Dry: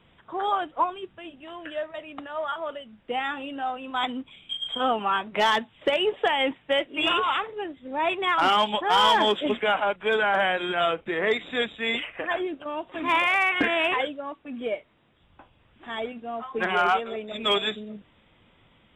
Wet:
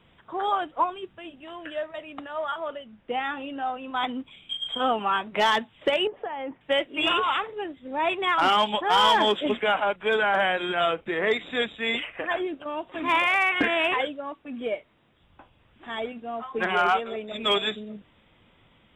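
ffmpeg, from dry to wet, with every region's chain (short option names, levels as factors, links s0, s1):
-filter_complex "[0:a]asettb=1/sr,asplit=3[s0][s1][s2];[s0]atrim=end=2.684[s3];[s1]atrim=start=2.68:end=4.2,asetpts=PTS-STARTPTS,afade=t=in:d=0.004:c=qsin,afade=t=out:st=1.516:d=0.004:c=qsin,lowpass=8800,aemphasis=mode=reproduction:type=cd[s4];[s2]atrim=start=4.196[s5];[s3][s4]acrossfade=d=0.004:c1=hsin:c2=qsin[s6];[s6][s5]acrossfade=d=0.004:c1=qsin:c2=hsin,asettb=1/sr,asplit=3[s7][s8][s9];[s7]atrim=end=6.074[s10];[s8]atrim=start=6.07:end=6.61,asetpts=PTS-STARTPTS,afade=t=in:d=0.004:c=qsin,afade=t=out:st=0.536:d=0.004:c=qsin,lowpass=1300,acompressor=threshold=0.0224:ratio=2.5:attack=3.2:release=140:knee=1:detection=peak[s11];[s9]atrim=start=6.606[s12];[s10][s11]acrossfade=d=0.004:c1=hsin:c2=qsin[s13];[s13][s12]acrossfade=d=0.004:c1=qsin:c2=hsin"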